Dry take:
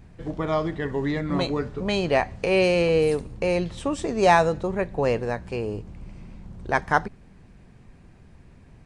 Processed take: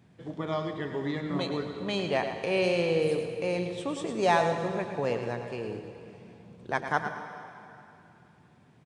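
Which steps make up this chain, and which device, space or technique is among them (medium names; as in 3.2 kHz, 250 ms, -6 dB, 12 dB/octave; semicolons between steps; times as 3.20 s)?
PA in a hall (high-pass 110 Hz 24 dB/octave; peaking EQ 3.4 kHz +7 dB 0.22 oct; delay 108 ms -9 dB; reverberation RT60 2.8 s, pre-delay 90 ms, DRR 8.5 dB); trim -7 dB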